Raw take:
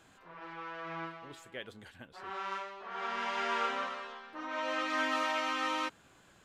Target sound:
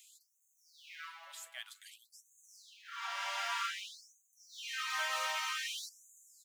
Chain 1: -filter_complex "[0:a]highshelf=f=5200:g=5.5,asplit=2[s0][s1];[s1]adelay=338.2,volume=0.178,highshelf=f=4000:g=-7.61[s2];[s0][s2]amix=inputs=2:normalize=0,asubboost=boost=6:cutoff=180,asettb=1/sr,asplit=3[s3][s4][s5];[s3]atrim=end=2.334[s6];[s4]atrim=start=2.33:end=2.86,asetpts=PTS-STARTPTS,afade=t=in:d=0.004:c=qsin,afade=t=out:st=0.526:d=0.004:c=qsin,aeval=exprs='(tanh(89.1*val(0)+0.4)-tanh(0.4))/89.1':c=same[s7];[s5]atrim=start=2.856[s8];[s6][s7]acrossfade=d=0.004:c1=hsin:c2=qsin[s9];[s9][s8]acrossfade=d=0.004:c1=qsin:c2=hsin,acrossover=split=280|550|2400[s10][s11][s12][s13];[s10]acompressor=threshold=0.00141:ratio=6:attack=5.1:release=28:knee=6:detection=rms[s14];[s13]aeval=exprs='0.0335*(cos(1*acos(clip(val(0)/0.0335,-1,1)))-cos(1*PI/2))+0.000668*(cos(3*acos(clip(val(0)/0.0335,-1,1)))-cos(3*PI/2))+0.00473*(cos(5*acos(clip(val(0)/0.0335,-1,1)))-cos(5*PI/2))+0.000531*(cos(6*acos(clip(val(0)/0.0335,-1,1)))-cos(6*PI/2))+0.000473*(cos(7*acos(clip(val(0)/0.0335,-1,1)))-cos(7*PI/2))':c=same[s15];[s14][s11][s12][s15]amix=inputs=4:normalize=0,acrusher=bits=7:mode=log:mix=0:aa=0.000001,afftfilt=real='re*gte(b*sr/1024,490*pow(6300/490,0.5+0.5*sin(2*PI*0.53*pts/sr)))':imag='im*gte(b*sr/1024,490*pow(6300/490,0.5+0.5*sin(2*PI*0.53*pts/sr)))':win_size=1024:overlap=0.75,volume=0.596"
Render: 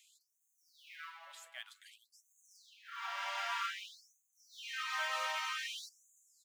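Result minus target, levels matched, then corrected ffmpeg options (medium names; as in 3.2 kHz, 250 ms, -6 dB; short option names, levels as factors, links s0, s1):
8 kHz band -4.5 dB
-filter_complex "[0:a]highshelf=f=5200:g=16.5,asplit=2[s0][s1];[s1]adelay=338.2,volume=0.178,highshelf=f=4000:g=-7.61[s2];[s0][s2]amix=inputs=2:normalize=0,asubboost=boost=6:cutoff=180,asettb=1/sr,asplit=3[s3][s4][s5];[s3]atrim=end=2.334[s6];[s4]atrim=start=2.33:end=2.86,asetpts=PTS-STARTPTS,afade=t=in:d=0.004:c=qsin,afade=t=out:st=0.526:d=0.004:c=qsin,aeval=exprs='(tanh(89.1*val(0)+0.4)-tanh(0.4))/89.1':c=same[s7];[s5]atrim=start=2.856[s8];[s6][s7]acrossfade=d=0.004:c1=hsin:c2=qsin[s9];[s9][s8]acrossfade=d=0.004:c1=qsin:c2=hsin,acrossover=split=280|550|2400[s10][s11][s12][s13];[s10]acompressor=threshold=0.00141:ratio=6:attack=5.1:release=28:knee=6:detection=rms[s14];[s13]aeval=exprs='0.0335*(cos(1*acos(clip(val(0)/0.0335,-1,1)))-cos(1*PI/2))+0.000668*(cos(3*acos(clip(val(0)/0.0335,-1,1)))-cos(3*PI/2))+0.00473*(cos(5*acos(clip(val(0)/0.0335,-1,1)))-cos(5*PI/2))+0.000531*(cos(6*acos(clip(val(0)/0.0335,-1,1)))-cos(6*PI/2))+0.000473*(cos(7*acos(clip(val(0)/0.0335,-1,1)))-cos(7*PI/2))':c=same[s15];[s14][s11][s12][s15]amix=inputs=4:normalize=0,acrusher=bits=7:mode=log:mix=0:aa=0.000001,afftfilt=real='re*gte(b*sr/1024,490*pow(6300/490,0.5+0.5*sin(2*PI*0.53*pts/sr)))':imag='im*gte(b*sr/1024,490*pow(6300/490,0.5+0.5*sin(2*PI*0.53*pts/sr)))':win_size=1024:overlap=0.75,volume=0.596"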